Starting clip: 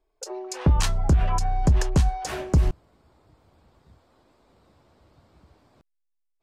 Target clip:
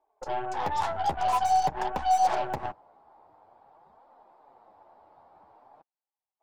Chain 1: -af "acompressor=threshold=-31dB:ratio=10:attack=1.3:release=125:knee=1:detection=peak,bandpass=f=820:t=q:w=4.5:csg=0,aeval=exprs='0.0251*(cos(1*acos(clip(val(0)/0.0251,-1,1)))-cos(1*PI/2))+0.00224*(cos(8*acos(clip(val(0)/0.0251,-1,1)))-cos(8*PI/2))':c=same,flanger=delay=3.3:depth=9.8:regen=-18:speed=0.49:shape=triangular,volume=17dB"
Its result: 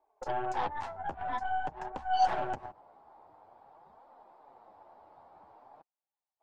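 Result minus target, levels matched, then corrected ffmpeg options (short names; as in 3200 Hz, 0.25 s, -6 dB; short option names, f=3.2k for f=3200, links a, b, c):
compressor: peak gain reduction +10.5 dB
-af "acompressor=threshold=-19.5dB:ratio=10:attack=1.3:release=125:knee=1:detection=peak,bandpass=f=820:t=q:w=4.5:csg=0,aeval=exprs='0.0251*(cos(1*acos(clip(val(0)/0.0251,-1,1)))-cos(1*PI/2))+0.00224*(cos(8*acos(clip(val(0)/0.0251,-1,1)))-cos(8*PI/2))':c=same,flanger=delay=3.3:depth=9.8:regen=-18:speed=0.49:shape=triangular,volume=17dB"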